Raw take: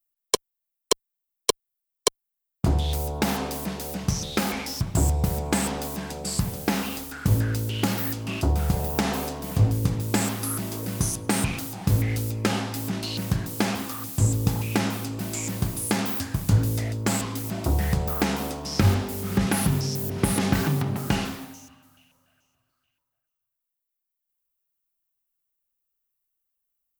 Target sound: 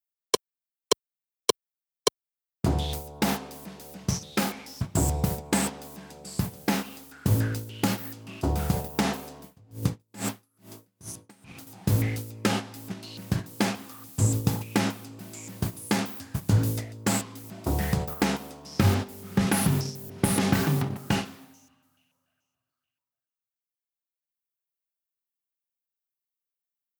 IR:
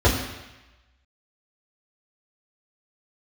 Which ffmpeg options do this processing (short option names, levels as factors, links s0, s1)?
-filter_complex "[0:a]agate=range=0.282:threshold=0.0562:ratio=16:detection=peak,highpass=93,asettb=1/sr,asplit=3[s0][s1][s2];[s0]atrim=end=9.424[s3];[s1]atrim=start=9.42:end=11.67,asetpts=PTS-STARTPTS,afade=t=in:d=0.004:c=qsin,afade=t=out:st=2.246:d=0.004:c=qsin,aeval=exprs='val(0)*pow(10,-36*(0.5-0.5*cos(2*PI*2.3*n/s))/20)':c=same[s4];[s2]atrim=start=11.666[s5];[s3][s4]acrossfade=d=0.004:c1=hsin:c2=qsin[s6];[s6][s5]acrossfade=d=0.004:c1=qsin:c2=hsin"